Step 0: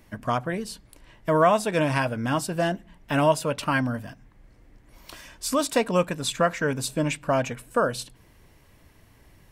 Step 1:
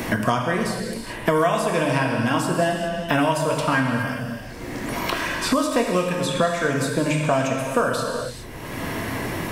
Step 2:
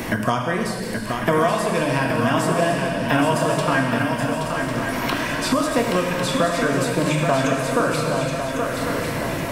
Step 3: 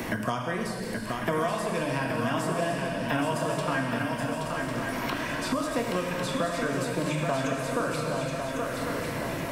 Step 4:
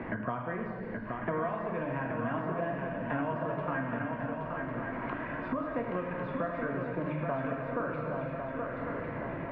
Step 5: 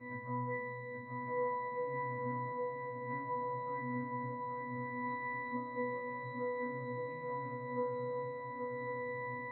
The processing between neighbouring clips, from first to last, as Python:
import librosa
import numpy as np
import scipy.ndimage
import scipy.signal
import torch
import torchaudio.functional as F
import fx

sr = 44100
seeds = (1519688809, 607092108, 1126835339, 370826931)

y1 = fx.rev_gated(x, sr, seeds[0], gate_ms=440, shape='falling', drr_db=0.0)
y1 = fx.band_squash(y1, sr, depth_pct=100)
y2 = fx.echo_swing(y1, sr, ms=1100, ratio=3, feedback_pct=53, wet_db=-6.0)
y3 = fx.band_squash(y2, sr, depth_pct=40)
y3 = F.gain(torch.from_numpy(y3), -8.5).numpy()
y4 = scipy.signal.sosfilt(scipy.signal.butter(4, 2000.0, 'lowpass', fs=sr, output='sos'), y3)
y4 = F.gain(torch.from_numpy(y4), -5.0).numpy()
y5 = fx.freq_snap(y4, sr, grid_st=2)
y5 = fx.octave_resonator(y5, sr, note='B', decay_s=0.32)
y5 = F.gain(torch.from_numpy(y5), 2.5).numpy()